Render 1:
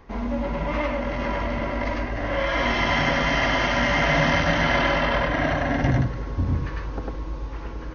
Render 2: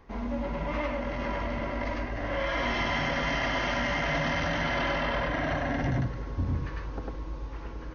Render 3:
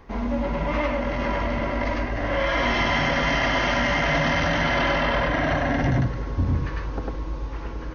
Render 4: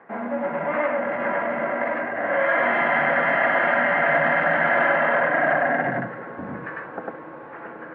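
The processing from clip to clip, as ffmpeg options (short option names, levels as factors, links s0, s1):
-af "alimiter=limit=0.188:level=0:latency=1:release=13,volume=0.531"
-af "acontrast=70"
-af "highpass=f=210:w=0.5412,highpass=f=210:w=1.3066,equalizer=f=270:t=q:w=4:g=-10,equalizer=f=390:t=q:w=4:g=-5,equalizer=f=710:t=q:w=4:g=4,equalizer=f=1000:t=q:w=4:g=-4,equalizer=f=1600:t=q:w=4:g=6,lowpass=f=2000:w=0.5412,lowpass=f=2000:w=1.3066,volume=1.41"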